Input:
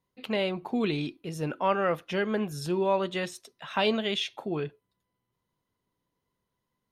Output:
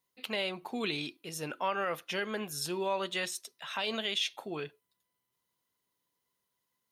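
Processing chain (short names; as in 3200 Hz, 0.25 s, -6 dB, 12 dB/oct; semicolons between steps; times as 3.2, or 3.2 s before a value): tilt +3 dB/oct; limiter -18.5 dBFS, peak gain reduction 7.5 dB; gain -3 dB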